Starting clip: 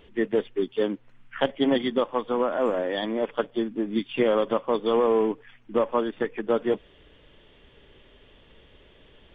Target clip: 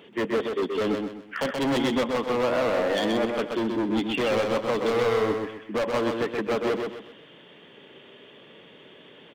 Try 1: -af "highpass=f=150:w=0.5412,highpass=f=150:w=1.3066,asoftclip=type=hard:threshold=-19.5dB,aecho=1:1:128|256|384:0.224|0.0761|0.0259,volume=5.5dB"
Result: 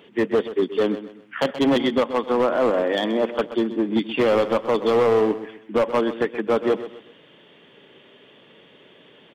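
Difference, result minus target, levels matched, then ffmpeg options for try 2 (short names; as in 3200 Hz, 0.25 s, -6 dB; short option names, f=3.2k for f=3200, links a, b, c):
echo-to-direct -8.5 dB; hard clip: distortion -7 dB
-af "highpass=f=150:w=0.5412,highpass=f=150:w=1.3066,asoftclip=type=hard:threshold=-28.5dB,aecho=1:1:128|256|384|512:0.596|0.203|0.0689|0.0234,volume=5.5dB"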